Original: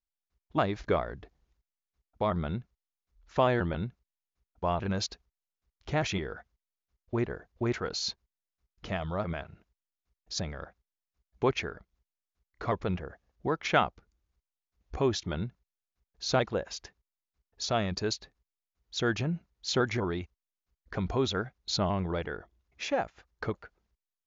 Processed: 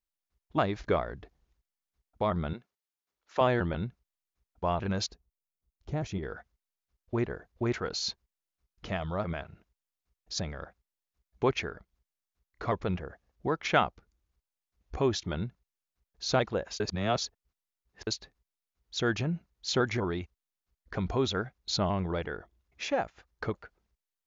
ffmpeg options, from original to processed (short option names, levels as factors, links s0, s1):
-filter_complex "[0:a]asettb=1/sr,asplit=3[s0][s1][s2];[s0]atrim=end=2.534[s3];[s1]atrim=start=2.53:end=3.41,asetpts=PTS-STARTPTS,afade=t=in:d=0.004:c=qsin,afade=t=out:st=0.876:d=0.004:c=qsin,highpass=340[s4];[s2]atrim=start=3.406[s5];[s3][s4]acrossfade=d=0.004:c1=hsin:c2=qsin[s6];[s6][s5]acrossfade=d=0.004:c1=qsin:c2=hsin,asettb=1/sr,asplit=3[s7][s8][s9];[s7]atrim=end=5.114[s10];[s8]atrim=start=5.11:end=6.23,asetpts=PTS-STARTPTS,afade=t=in:d=0.004:c=qsin,afade=t=out:st=1.116:d=0.004:c=qsin,equalizer=f=2400:w=0.31:g=-14[s11];[s9]atrim=start=6.226[s12];[s10][s11]acrossfade=d=0.004:c1=hsin:c2=qsin[s13];[s13][s12]acrossfade=d=0.004:c1=qsin:c2=hsin,asplit=3[s14][s15][s16];[s14]atrim=end=16.802[s17];[s15]atrim=start=16.798:end=18.072,asetpts=PTS-STARTPTS,areverse[s18];[s16]atrim=start=18.068[s19];[s17][s18]acrossfade=d=0.004:c1=hsin:c2=hsin[s20];[s20][s19]acrossfade=d=0.004:c1=hsin:c2=hsin"